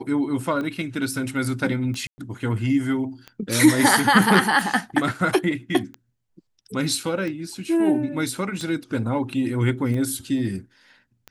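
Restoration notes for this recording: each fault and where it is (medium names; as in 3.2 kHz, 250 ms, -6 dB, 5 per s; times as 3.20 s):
tick 45 rpm -20 dBFS
2.07–2.18 s: dropout 110 ms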